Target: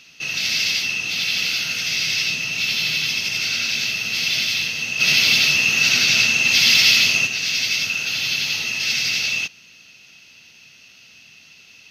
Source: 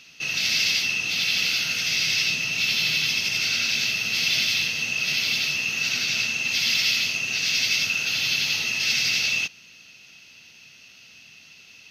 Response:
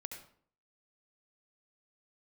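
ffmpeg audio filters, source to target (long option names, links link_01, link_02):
-filter_complex "[0:a]asplit=3[link_01][link_02][link_03];[link_01]afade=type=out:start_time=4.99:duration=0.02[link_04];[link_02]acontrast=87,afade=type=in:start_time=4.99:duration=0.02,afade=type=out:start_time=7.26:duration=0.02[link_05];[link_03]afade=type=in:start_time=7.26:duration=0.02[link_06];[link_04][link_05][link_06]amix=inputs=3:normalize=0,volume=1.5dB"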